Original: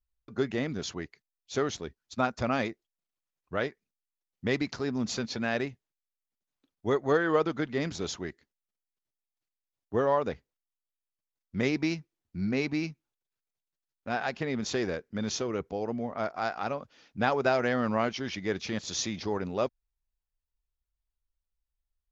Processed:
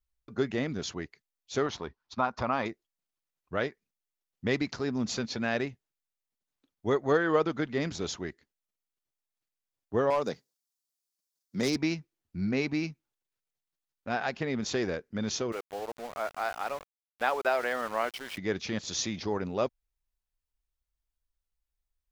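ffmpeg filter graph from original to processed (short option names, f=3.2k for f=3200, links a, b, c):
-filter_complex "[0:a]asettb=1/sr,asplit=3[a][b][c];[a]atrim=end=1.664[d];[b]atrim=start=1.66:end=2.66,asetpts=PTS-STARTPTS,afade=t=in:d=0.004:c=qsin,afade=t=out:st=0.996:d=0.004:c=qsin,lowpass=f=5.6k:w=0.5412,lowpass=f=5.6k:w=1.3066,equalizer=f=1k:t=o:w=0.88:g=12.5,acompressor=threshold=-33dB:ratio=1.5:attack=3.2:release=140:knee=1:detection=peak[e];[c]atrim=start=2.656[f];[d][e]acrossfade=d=0.004:c1=hsin:c2=qsin[g];[g][f]acrossfade=d=0.004:c1=qsin:c2=hsin,asettb=1/sr,asplit=3[h][i][j];[h]atrim=end=10.104[k];[i]atrim=start=10.1:end=11.76,asetpts=PTS-STARTPTS,afade=t=in:d=0.004:c=qsin,afade=t=out:st=1.656:d=0.004:c=qsin,highpass=f=130:w=0.5412,highpass=f=130:w=1.3066,highshelf=f=3.6k:t=q:w=1.5:g=9,asoftclip=type=hard:threshold=-21dB[l];[j]atrim=start=11.756[m];[k][l]acrossfade=d=0.004:c1=hsin:c2=qsin[n];[n][m]acrossfade=d=0.004:c1=qsin:c2=hsin,asettb=1/sr,asplit=3[o][p][q];[o]atrim=end=15.524[r];[p]atrim=start=15.52:end=18.38,asetpts=PTS-STARTPTS,afade=t=in:d=0.004:c=qsin,afade=t=out:st=2.856:d=0.004:c=qsin,highpass=520,lowpass=3.8k,aeval=exprs='val(0)*gte(abs(val(0)),0.00891)':c=same[s];[q]atrim=start=18.376[t];[r][s]acrossfade=d=0.004:c1=hsin:c2=qsin[u];[u][t]acrossfade=d=0.004:c1=qsin:c2=hsin"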